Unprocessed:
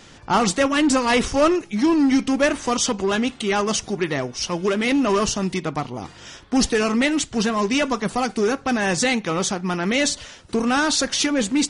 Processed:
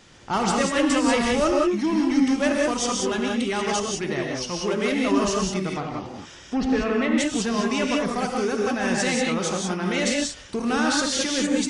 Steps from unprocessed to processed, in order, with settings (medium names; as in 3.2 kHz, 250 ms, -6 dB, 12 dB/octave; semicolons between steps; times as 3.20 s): gated-style reverb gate 210 ms rising, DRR -0.5 dB; 5.75–7.18 s: low-pass that closes with the level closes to 2.6 kHz, closed at -15.5 dBFS; trim -6 dB